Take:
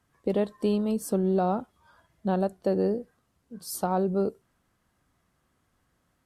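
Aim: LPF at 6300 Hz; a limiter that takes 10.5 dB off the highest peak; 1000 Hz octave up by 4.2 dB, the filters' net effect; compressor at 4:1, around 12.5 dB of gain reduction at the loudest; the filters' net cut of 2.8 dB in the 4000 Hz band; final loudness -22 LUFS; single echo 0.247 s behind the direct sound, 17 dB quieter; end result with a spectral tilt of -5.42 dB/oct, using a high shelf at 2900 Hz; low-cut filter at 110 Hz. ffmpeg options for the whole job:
-af "highpass=110,lowpass=6.3k,equalizer=f=1k:t=o:g=6,highshelf=f=2.9k:g=6.5,equalizer=f=4k:t=o:g=-9,acompressor=threshold=-35dB:ratio=4,alimiter=level_in=5.5dB:limit=-24dB:level=0:latency=1,volume=-5.5dB,aecho=1:1:247:0.141,volume=18.5dB"

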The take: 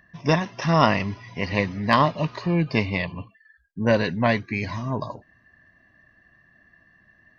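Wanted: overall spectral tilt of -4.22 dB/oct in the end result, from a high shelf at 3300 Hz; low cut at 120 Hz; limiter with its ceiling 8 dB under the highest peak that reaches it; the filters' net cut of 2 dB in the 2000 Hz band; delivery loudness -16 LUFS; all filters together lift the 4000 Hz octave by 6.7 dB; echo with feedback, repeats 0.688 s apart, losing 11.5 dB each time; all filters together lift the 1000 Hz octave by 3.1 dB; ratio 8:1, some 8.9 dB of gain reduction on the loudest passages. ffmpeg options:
-af "highpass=120,equalizer=f=1k:t=o:g=4.5,equalizer=f=2k:t=o:g=-7.5,highshelf=f=3.3k:g=4,equalizer=f=4k:t=o:g=8.5,acompressor=threshold=-19dB:ratio=8,alimiter=limit=-14.5dB:level=0:latency=1,aecho=1:1:688|1376|2064:0.266|0.0718|0.0194,volume=12.5dB"

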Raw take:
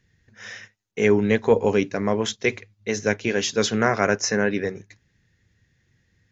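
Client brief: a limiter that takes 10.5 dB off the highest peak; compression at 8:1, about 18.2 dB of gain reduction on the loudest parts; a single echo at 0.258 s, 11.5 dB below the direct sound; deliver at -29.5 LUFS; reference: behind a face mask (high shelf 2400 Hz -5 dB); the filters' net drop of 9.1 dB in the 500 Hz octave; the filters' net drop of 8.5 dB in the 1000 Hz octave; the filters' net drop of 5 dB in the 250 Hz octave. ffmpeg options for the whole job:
-af "equalizer=f=250:t=o:g=-4,equalizer=f=500:t=o:g=-8,equalizer=f=1k:t=o:g=-8,acompressor=threshold=-39dB:ratio=8,alimiter=level_in=9.5dB:limit=-24dB:level=0:latency=1,volume=-9.5dB,highshelf=f=2.4k:g=-5,aecho=1:1:258:0.266,volume=17.5dB"

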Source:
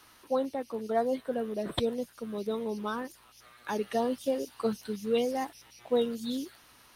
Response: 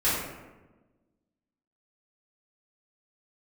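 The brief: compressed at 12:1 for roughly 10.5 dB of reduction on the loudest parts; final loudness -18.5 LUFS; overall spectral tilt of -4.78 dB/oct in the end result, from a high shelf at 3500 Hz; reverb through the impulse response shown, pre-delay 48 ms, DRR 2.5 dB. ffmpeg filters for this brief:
-filter_complex "[0:a]highshelf=f=3.5k:g=-6.5,acompressor=threshold=-33dB:ratio=12,asplit=2[a][b];[1:a]atrim=start_sample=2205,adelay=48[c];[b][c]afir=irnorm=-1:irlink=0,volume=-15.5dB[d];[a][d]amix=inputs=2:normalize=0,volume=18.5dB"

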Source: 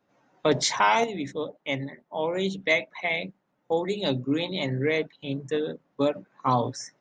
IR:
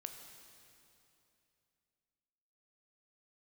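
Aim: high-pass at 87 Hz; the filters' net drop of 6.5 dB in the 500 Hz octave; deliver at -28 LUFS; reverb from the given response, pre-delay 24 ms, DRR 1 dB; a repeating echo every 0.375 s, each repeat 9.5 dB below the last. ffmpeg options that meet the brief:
-filter_complex "[0:a]highpass=87,equalizer=f=500:t=o:g=-8,aecho=1:1:375|750|1125|1500:0.335|0.111|0.0365|0.012,asplit=2[a][b];[1:a]atrim=start_sample=2205,adelay=24[c];[b][c]afir=irnorm=-1:irlink=0,volume=2.5dB[d];[a][d]amix=inputs=2:normalize=0,volume=-1.5dB"

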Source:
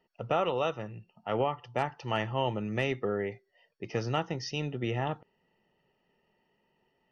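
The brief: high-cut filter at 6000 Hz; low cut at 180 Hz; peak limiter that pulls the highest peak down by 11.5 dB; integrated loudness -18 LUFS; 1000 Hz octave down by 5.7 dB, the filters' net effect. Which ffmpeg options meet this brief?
-af "highpass=180,lowpass=6k,equalizer=f=1k:t=o:g=-8,volume=24dB,alimiter=limit=-7dB:level=0:latency=1"

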